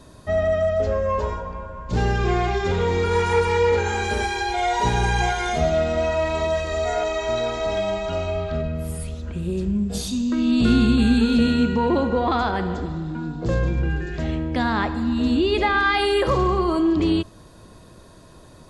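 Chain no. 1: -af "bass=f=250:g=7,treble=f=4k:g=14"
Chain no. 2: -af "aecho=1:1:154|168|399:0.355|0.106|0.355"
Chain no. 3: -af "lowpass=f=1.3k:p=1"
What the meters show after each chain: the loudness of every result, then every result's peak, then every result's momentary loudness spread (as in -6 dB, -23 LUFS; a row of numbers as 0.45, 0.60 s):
-18.5, -21.0, -23.0 LUFS; -2.0, -5.0, -8.0 dBFS; 8, 10, 9 LU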